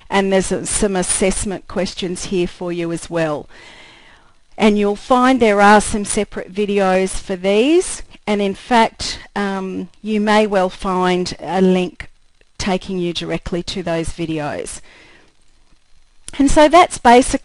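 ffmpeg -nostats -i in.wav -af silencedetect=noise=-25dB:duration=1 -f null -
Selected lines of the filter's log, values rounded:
silence_start: 3.41
silence_end: 4.58 | silence_duration: 1.17
silence_start: 14.77
silence_end: 16.28 | silence_duration: 1.51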